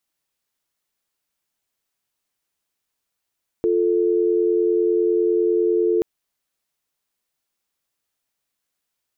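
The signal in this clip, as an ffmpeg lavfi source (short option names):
-f lavfi -i "aevalsrc='0.119*(sin(2*PI*350*t)+sin(2*PI*440*t))':d=2.38:s=44100"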